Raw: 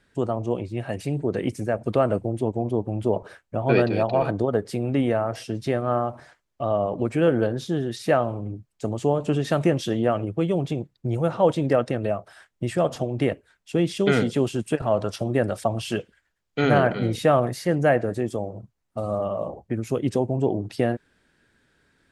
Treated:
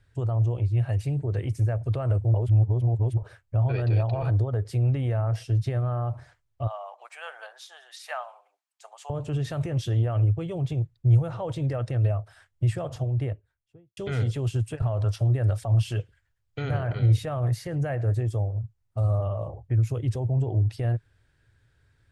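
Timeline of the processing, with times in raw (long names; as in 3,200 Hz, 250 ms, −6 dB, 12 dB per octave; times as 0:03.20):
0:02.34–0:03.17: reverse
0:06.67–0:09.10: Butterworth high-pass 740 Hz
0:12.74–0:13.97: fade out and dull
whole clip: brickwall limiter −16 dBFS; low shelf with overshoot 150 Hz +11 dB, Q 3; level −6 dB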